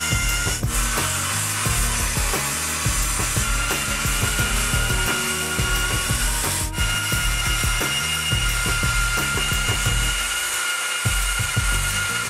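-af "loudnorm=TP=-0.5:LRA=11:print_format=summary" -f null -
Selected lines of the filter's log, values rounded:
Input Integrated:    -20.7 LUFS
Input True Peak:      -8.4 dBTP
Input LRA:             0.3 LU
Input Threshold:     -30.7 LUFS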